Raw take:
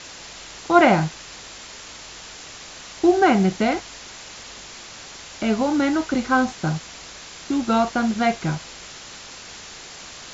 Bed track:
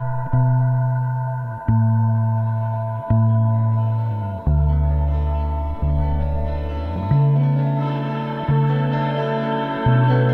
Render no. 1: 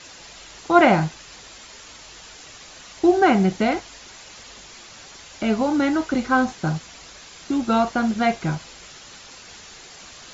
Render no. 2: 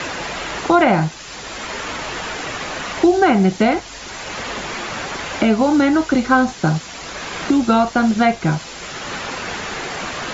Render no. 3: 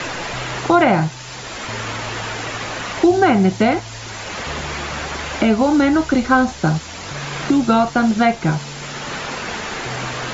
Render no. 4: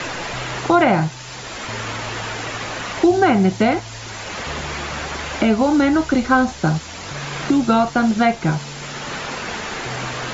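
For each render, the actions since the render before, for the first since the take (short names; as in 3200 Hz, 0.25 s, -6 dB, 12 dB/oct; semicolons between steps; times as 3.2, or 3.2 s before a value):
denoiser 6 dB, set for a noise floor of -40 dBFS
maximiser +6 dB; three-band squash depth 70%
add bed track -17 dB
gain -1 dB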